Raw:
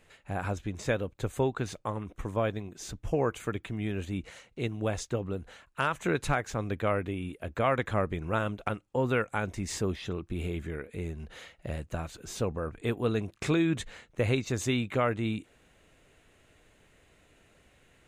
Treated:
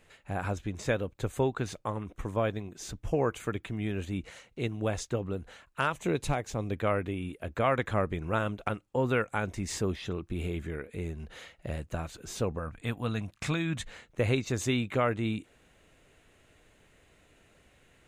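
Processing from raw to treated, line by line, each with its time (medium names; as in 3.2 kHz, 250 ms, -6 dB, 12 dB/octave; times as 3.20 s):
5.90–6.73 s: peaking EQ 1.5 kHz -9.5 dB 0.85 oct
12.59–13.85 s: peaking EQ 390 Hz -14.5 dB 0.59 oct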